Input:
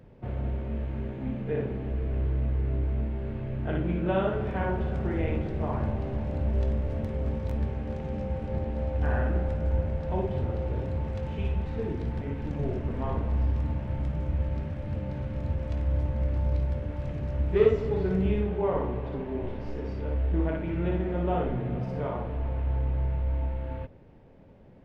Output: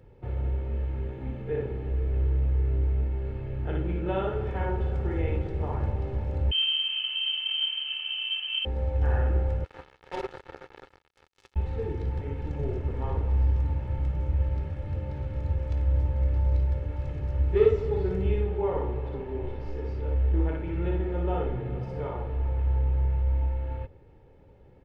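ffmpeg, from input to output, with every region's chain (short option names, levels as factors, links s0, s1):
-filter_complex "[0:a]asettb=1/sr,asplit=3[s0][s1][s2];[s0]atrim=end=6.514[s3];[s1]atrim=start=6.51:end=8.65,asetpts=PTS-STARTPTS,afade=t=in:d=0.004:c=qsin,afade=t=out:st=2.136:d=0.004:c=qsin,bandreject=f=920:w=19,lowpass=f=2700:t=q:w=0.5098,lowpass=f=2700:t=q:w=0.6013,lowpass=f=2700:t=q:w=0.9,lowpass=f=2700:t=q:w=2.563,afreqshift=-3200[s4];[s2]atrim=start=8.646[s5];[s3][s4]acrossfade=d=0.004:c1=hsin:c2=qsin[s6];[s6][s5]acrossfade=d=0.004:c1=qsin:c2=hsin,asettb=1/sr,asplit=3[s7][s8][s9];[s7]atrim=end=9.644[s10];[s8]atrim=start=9.64:end=11.56,asetpts=PTS-STARTPTS,afade=t=in:d=0.004:c=qsin,afade=t=out:st=1.916:d=0.004:c=qsin,highpass=370,acrusher=bits=4:mix=0:aa=0.5[s11];[s9]atrim=start=11.556[s12];[s10][s11]acrossfade=d=0.004:c1=hsin:c2=qsin[s13];[s13][s12]acrossfade=d=0.004:c1=qsin:c2=hsin,equalizer=f=70:t=o:w=1.2:g=3.5,aecho=1:1:2.3:0.51,volume=0.708"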